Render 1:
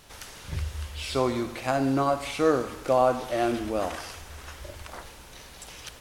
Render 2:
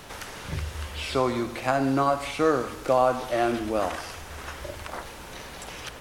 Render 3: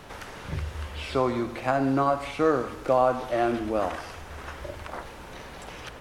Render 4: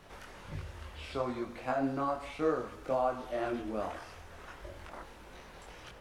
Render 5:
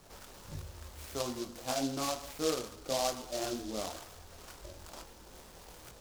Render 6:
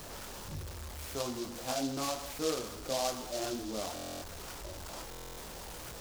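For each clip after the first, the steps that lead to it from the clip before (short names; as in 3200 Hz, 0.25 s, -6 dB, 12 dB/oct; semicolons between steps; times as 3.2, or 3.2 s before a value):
dynamic EQ 1300 Hz, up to +4 dB, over -34 dBFS, Q 0.73; three-band squash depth 40%
high shelf 3400 Hz -9 dB
chorus voices 6, 1.2 Hz, delay 22 ms, depth 3.1 ms; gain -6.5 dB
noise-modulated delay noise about 4700 Hz, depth 0.12 ms; gain -2 dB
zero-crossing step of -40 dBFS; stuck buffer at 3.94/5.1, samples 1024, times 11; gain -2 dB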